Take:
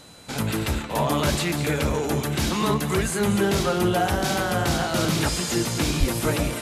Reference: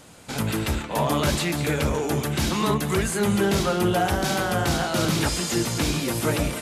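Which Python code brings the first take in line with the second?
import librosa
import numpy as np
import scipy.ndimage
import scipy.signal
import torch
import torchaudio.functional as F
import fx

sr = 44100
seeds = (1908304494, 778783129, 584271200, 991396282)

y = fx.fix_declip(x, sr, threshold_db=-11.0)
y = fx.notch(y, sr, hz=4000.0, q=30.0)
y = fx.highpass(y, sr, hz=140.0, slope=24, at=(5.99, 6.11), fade=0.02)
y = fx.fix_echo_inverse(y, sr, delay_ms=233, level_db=-16.0)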